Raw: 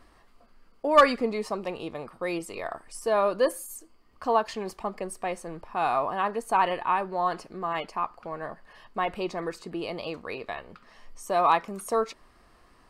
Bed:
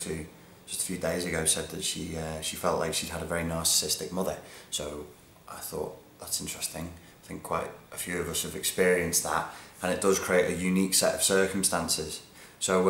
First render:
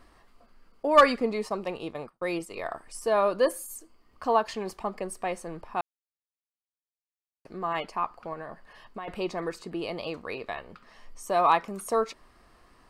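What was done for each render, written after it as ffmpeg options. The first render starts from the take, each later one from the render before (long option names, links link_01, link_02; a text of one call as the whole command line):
ffmpeg -i in.wav -filter_complex "[0:a]asettb=1/sr,asplit=3[link_01][link_02][link_03];[link_01]atrim=end=1.024[link_04];[link_02]atrim=start=1.02:end=2.66,asetpts=PTS-STARTPTS,afade=type=in:duration=0.004:curve=qsin,afade=type=out:start_time=1.636:duration=0.004:curve=qsin,agate=range=-33dB:threshold=-38dB:ratio=3:release=100:detection=peak[link_05];[link_03]atrim=start=2.656[link_06];[link_04][link_05]acrossfade=duration=0.004:curve1=hsin:curve2=qsin[link_07];[link_07][link_06]acrossfade=duration=0.004:curve1=qsin:curve2=hsin,asettb=1/sr,asplit=3[link_08][link_09][link_10];[link_08]atrim=end=8.334[link_11];[link_09]atrim=start=8.33:end=9.08,asetpts=PTS-STARTPTS,afade=type=in:duration=0.004:curve=qsin,afade=type=out:start_time=0.746:duration=0.004:curve=qsin,acompressor=threshold=-34dB:ratio=6:attack=3.2:release=140:knee=1:detection=peak[link_12];[link_10]atrim=start=9.076[link_13];[link_11][link_12]acrossfade=duration=0.004:curve1=hsin:curve2=qsin[link_14];[link_14][link_13]acrossfade=duration=0.004:curve1=qsin:curve2=hsin,asplit=3[link_15][link_16][link_17];[link_15]atrim=end=5.81,asetpts=PTS-STARTPTS,afade=type=out:start_time=5.806:duration=0.004:curve=hsin[link_18];[link_16]atrim=start=5.81:end=7.45,asetpts=PTS-STARTPTS,volume=0[link_19];[link_17]atrim=start=7.45,asetpts=PTS-STARTPTS,afade=type=in:duration=0.004:curve=hsin[link_20];[link_18][link_19][link_20]concat=n=3:v=0:a=1" out.wav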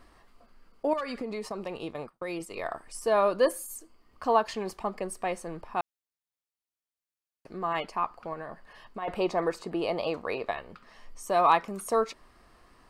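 ffmpeg -i in.wav -filter_complex "[0:a]asettb=1/sr,asplit=3[link_01][link_02][link_03];[link_01]atrim=end=0.934[link_04];[link_02]atrim=start=0.93:end=2.46,asetpts=PTS-STARTPTS,afade=type=in:duration=0.004:curve=qsin,afade=type=out:start_time=1.526:duration=0.004:curve=qsin,acompressor=threshold=-30dB:ratio=10:attack=3.2:release=140:knee=1:detection=peak[link_05];[link_03]atrim=start=2.456[link_06];[link_04][link_05]acrossfade=duration=0.004:curve1=hsin:curve2=qsin[link_07];[link_07][link_06]acrossfade=duration=0.004:curve1=qsin:curve2=hsin,asettb=1/sr,asplit=3[link_08][link_09][link_10];[link_08]atrim=end=9.024[link_11];[link_09]atrim=start=9.02:end=10.51,asetpts=PTS-STARTPTS,afade=type=in:duration=0.004:curve=qsin,afade=type=out:start_time=1.486:duration=0.004:curve=qsin,equalizer=frequency=720:width=0.83:gain=7[link_12];[link_10]atrim=start=10.506[link_13];[link_11][link_12]acrossfade=duration=0.004:curve1=hsin:curve2=qsin[link_14];[link_14][link_13]acrossfade=duration=0.004:curve1=qsin:curve2=hsin" out.wav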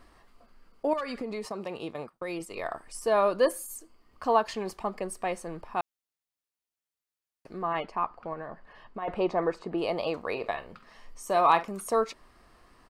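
ffmpeg -i in.wav -filter_complex "[0:a]asettb=1/sr,asplit=3[link_01][link_02][link_03];[link_01]atrim=end=1.454[link_04];[link_02]atrim=start=1.45:end=2.12,asetpts=PTS-STARTPTS,afade=type=in:duration=0.004:curve=qsin,afade=type=out:start_time=0.666:duration=0.004:curve=qsin,highpass=84[link_05];[link_03]atrim=start=2.116[link_06];[link_04][link_05]acrossfade=duration=0.004:curve1=hsin:curve2=qsin[link_07];[link_07][link_06]acrossfade=duration=0.004:curve1=qsin:curve2=hsin,asettb=1/sr,asplit=3[link_08][link_09][link_10];[link_08]atrim=end=7.624[link_11];[link_09]atrim=start=7.62:end=9.78,asetpts=PTS-STARTPTS,afade=type=in:duration=0.004:curve=qsin,afade=type=out:start_time=2.156:duration=0.004:curve=qsin,aemphasis=mode=reproduction:type=75fm[link_12];[link_10]atrim=start=9.776[link_13];[link_11][link_12]acrossfade=duration=0.004:curve1=hsin:curve2=qsin[link_14];[link_14][link_13]acrossfade=duration=0.004:curve1=qsin:curve2=hsin,asplit=3[link_15][link_16][link_17];[link_15]afade=type=out:start_time=10.35:duration=0.02[link_18];[link_16]asplit=2[link_19][link_20];[link_20]adelay=48,volume=-13.5dB[link_21];[link_19][link_21]amix=inputs=2:normalize=0,afade=type=in:start_time=10.35:duration=0.02,afade=type=out:start_time=11.66:duration=0.02[link_22];[link_17]afade=type=in:start_time=11.66:duration=0.02[link_23];[link_18][link_22][link_23]amix=inputs=3:normalize=0" out.wav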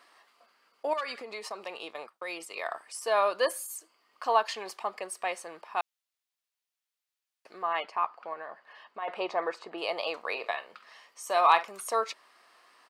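ffmpeg -i in.wav -af "highpass=610,equalizer=frequency=3300:width_type=o:width=2:gain=4.5" out.wav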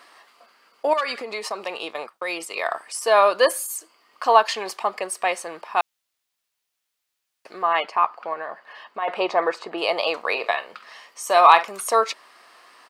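ffmpeg -i in.wav -af "volume=9.5dB,alimiter=limit=-1dB:level=0:latency=1" out.wav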